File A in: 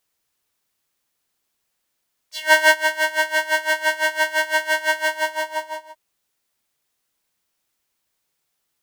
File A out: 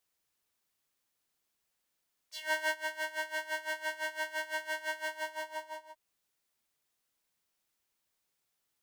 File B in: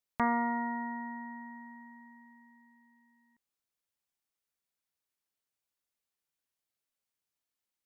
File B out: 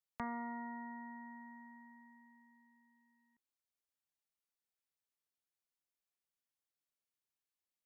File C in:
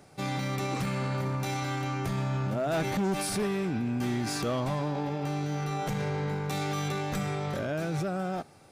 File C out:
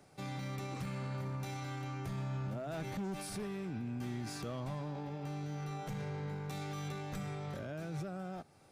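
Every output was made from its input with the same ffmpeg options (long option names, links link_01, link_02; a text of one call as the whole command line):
ffmpeg -i in.wav -filter_complex "[0:a]acrossover=split=170[link_01][link_02];[link_02]acompressor=threshold=-43dB:ratio=1.5[link_03];[link_01][link_03]amix=inputs=2:normalize=0,volume=-7dB" out.wav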